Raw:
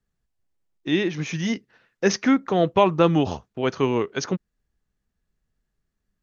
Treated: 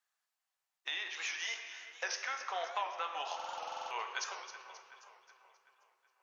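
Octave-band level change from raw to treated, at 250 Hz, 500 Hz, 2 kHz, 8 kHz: under -40 dB, -24.5 dB, -7.5 dB, no reading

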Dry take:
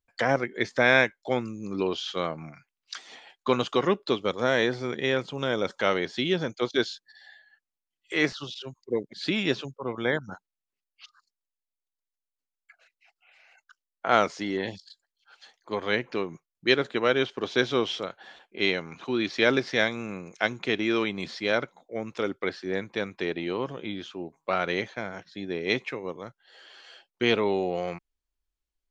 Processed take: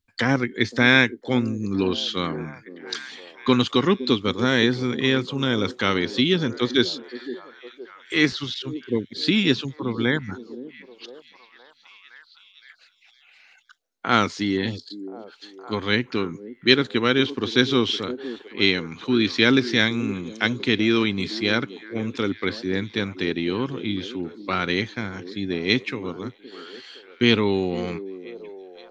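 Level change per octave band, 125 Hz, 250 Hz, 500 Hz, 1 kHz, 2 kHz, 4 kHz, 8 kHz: +9.0 dB, +8.5 dB, +1.5 dB, +1.5 dB, +4.0 dB, +8.0 dB, no reading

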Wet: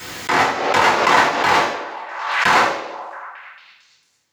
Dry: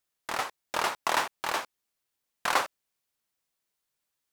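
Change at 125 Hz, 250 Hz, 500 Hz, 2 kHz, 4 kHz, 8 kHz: +20.0 dB, +19.0 dB, +16.5 dB, +16.0 dB, +12.5 dB, +8.0 dB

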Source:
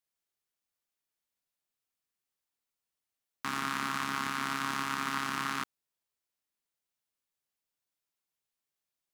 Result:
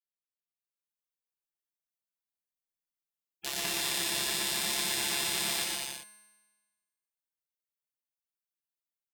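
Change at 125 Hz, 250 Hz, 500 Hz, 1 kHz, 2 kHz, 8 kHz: -3.0 dB, -4.5 dB, +7.0 dB, -8.0 dB, -1.0 dB, +13.0 dB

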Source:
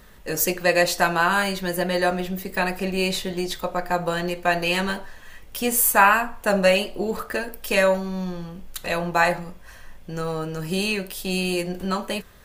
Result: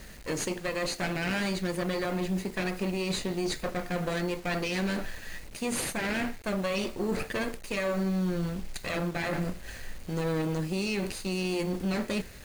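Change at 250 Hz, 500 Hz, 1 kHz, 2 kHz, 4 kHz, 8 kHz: -3.0 dB, -8.5 dB, -14.5 dB, -11.0 dB, -8.0 dB, -10.0 dB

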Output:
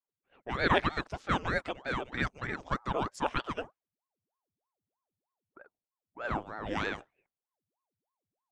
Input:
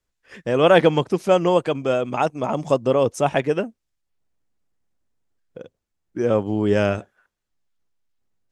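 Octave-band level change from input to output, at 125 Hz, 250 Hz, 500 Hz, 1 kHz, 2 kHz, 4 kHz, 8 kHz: -12.5 dB, -14.5 dB, -19.0 dB, -9.0 dB, -4.5 dB, -8.5 dB, -13.5 dB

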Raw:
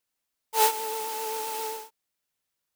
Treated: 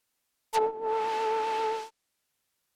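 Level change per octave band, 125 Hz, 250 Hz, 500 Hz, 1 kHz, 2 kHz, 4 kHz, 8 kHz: no reading, +5.0 dB, +3.5 dB, +0.5 dB, -1.5 dB, -7.0 dB, -16.0 dB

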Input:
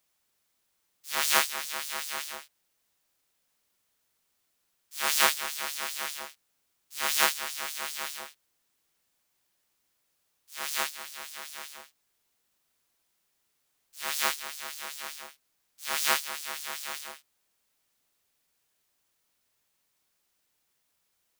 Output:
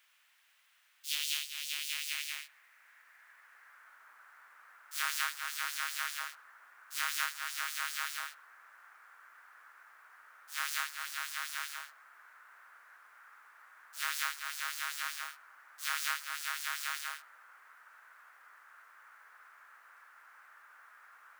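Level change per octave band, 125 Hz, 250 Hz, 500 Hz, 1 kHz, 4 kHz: no reading, under -30 dB, -22.5 dB, -6.5 dB, -5.5 dB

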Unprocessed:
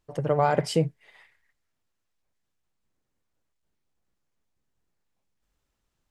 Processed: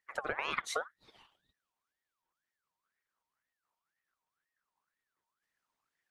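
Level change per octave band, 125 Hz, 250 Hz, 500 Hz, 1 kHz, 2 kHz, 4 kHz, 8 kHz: -31.5 dB, -23.0 dB, -16.5 dB, -11.5 dB, 0.0 dB, -5.5 dB, -4.5 dB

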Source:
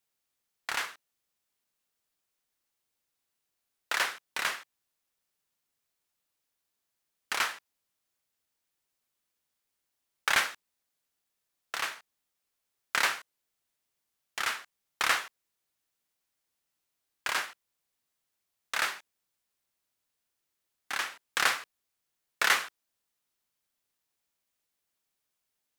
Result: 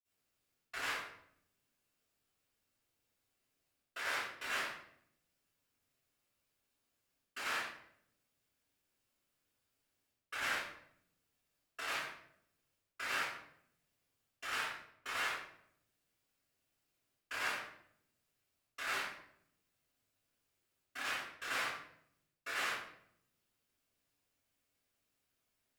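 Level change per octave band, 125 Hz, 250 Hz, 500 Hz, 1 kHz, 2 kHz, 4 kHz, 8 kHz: no reading, -3.5 dB, -5.0 dB, -8.0 dB, -8.0 dB, -9.5 dB, -11.5 dB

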